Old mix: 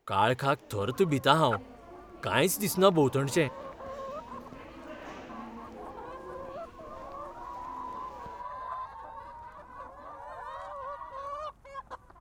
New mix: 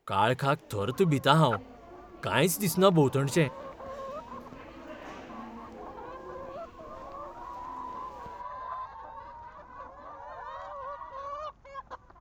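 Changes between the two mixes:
speech: add peaking EQ 160 Hz +8 dB 0.28 oct; second sound: add steep low-pass 7 kHz 96 dB/octave

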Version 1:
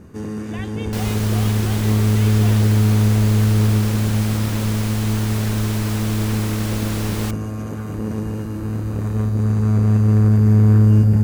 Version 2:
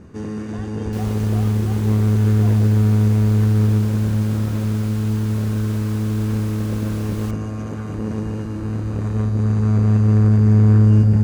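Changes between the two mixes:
speech: add boxcar filter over 19 samples; first sound: add low-pass 7.5 kHz 12 dB/octave; second sound -10.0 dB

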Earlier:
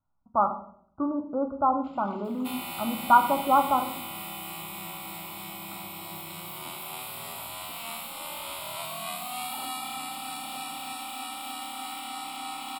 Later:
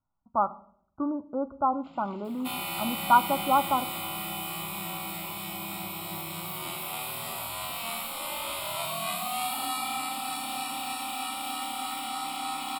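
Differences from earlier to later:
speech: send -10.5 dB; second sound: send +10.0 dB

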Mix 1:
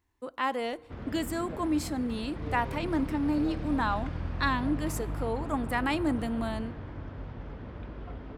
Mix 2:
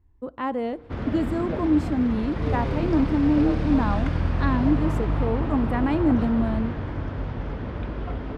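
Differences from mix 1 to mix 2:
speech: add tilt EQ -4.5 dB/octave; background +10.5 dB

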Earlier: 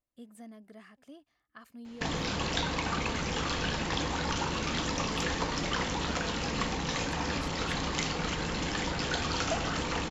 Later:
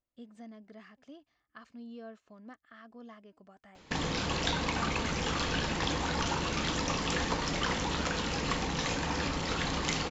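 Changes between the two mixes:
speech: add steep low-pass 6.7 kHz; background: entry +1.90 s

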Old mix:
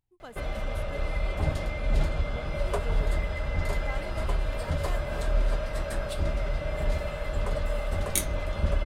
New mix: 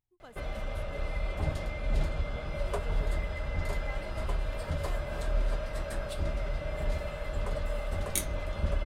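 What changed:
speech -6.5 dB; background -4.0 dB

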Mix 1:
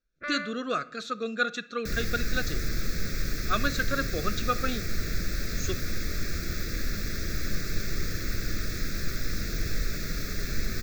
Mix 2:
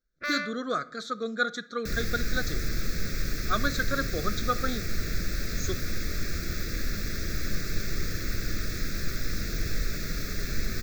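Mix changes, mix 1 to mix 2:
speech: add Butterworth band-stop 2.7 kHz, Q 2.7; first sound: remove distance through air 370 m

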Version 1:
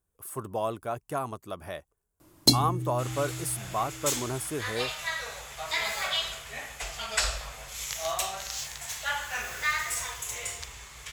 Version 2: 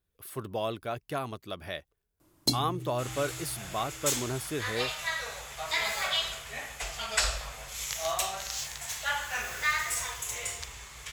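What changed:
speech: add ten-band graphic EQ 1 kHz -6 dB, 2 kHz +4 dB, 4 kHz +10 dB, 8 kHz -9 dB; first sound -7.0 dB

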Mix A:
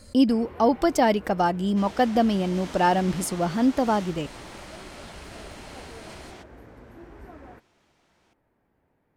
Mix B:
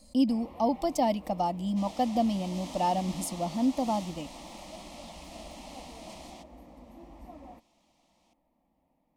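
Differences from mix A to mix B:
speech -5.0 dB; master: add static phaser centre 410 Hz, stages 6

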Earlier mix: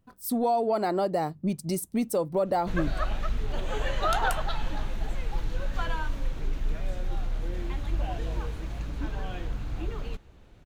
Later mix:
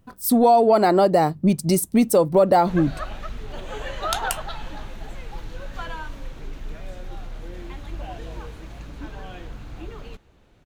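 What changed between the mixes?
speech +10.0 dB; background: add bass shelf 120 Hz -6 dB

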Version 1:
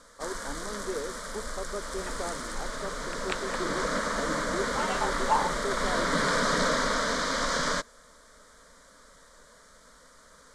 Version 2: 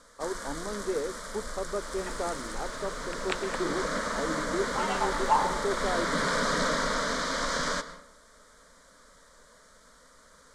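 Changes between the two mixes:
speech +3.5 dB; first sound -3.0 dB; reverb: on, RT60 0.65 s

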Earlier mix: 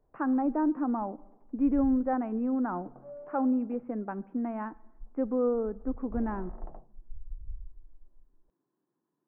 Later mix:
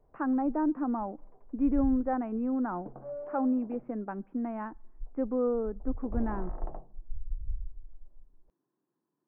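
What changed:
speech: send -10.5 dB; background +5.5 dB

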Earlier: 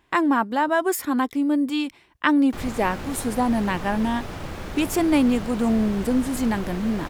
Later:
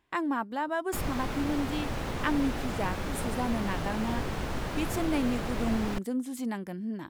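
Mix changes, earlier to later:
speech -10.0 dB; background: entry -1.60 s

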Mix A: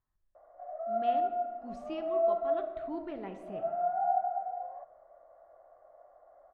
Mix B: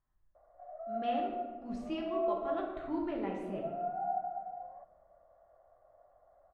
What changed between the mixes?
speech: send +9.5 dB; background -6.0 dB

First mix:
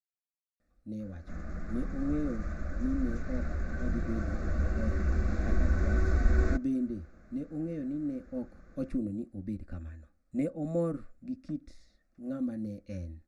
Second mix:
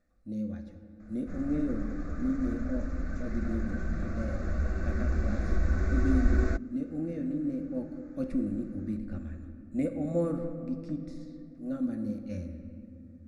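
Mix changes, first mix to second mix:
speech: entry -0.60 s; reverb: on, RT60 2.6 s

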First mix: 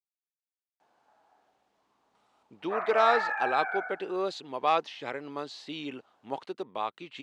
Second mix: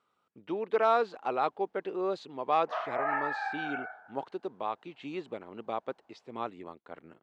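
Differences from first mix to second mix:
speech: entry -2.15 s; master: add treble shelf 2.2 kHz -10.5 dB

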